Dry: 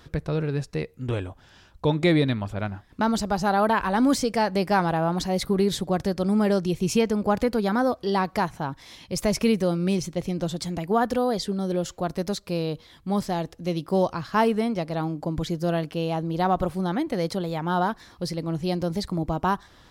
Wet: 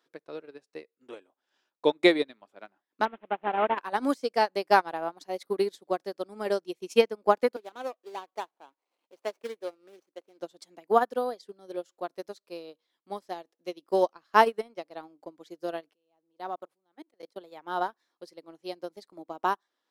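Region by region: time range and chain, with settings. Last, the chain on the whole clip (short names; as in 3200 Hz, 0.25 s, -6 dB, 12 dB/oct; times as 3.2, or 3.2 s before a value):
3.05–3.78 CVSD 16 kbps + low shelf 200 Hz +3 dB + mismatched tape noise reduction encoder only
7.56–10.4 median filter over 25 samples + HPF 290 Hz + low shelf 490 Hz -4.5 dB
15.93–17.36 level quantiser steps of 24 dB + transient shaper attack -5 dB, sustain +2 dB
whole clip: HPF 300 Hz 24 dB/oct; transient shaper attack +2 dB, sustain -7 dB; upward expander 2.5:1, over -33 dBFS; gain +3.5 dB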